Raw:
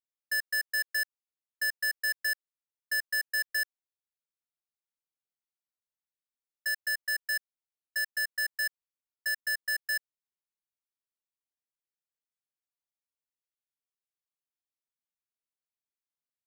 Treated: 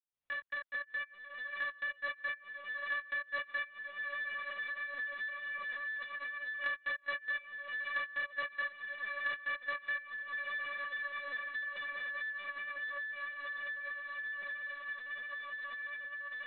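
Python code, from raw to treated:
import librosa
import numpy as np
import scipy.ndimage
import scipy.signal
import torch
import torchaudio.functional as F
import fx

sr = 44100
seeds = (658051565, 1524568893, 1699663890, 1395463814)

p1 = fx.fade_in_head(x, sr, length_s=4.41)
p2 = fx.highpass(p1, sr, hz=880.0, slope=6)
p3 = fx.dynamic_eq(p2, sr, hz=2300.0, q=4.1, threshold_db=-52.0, ratio=4.0, max_db=-4)
p4 = p3 + fx.echo_diffused(p3, sr, ms=636, feedback_pct=73, wet_db=-12.0, dry=0)
p5 = np.repeat(p4[::4], 4)[:len(p4)]
p6 = fx.lpc_vocoder(p5, sr, seeds[0], excitation='pitch_kept', order=16)
y = fx.band_squash(p6, sr, depth_pct=100)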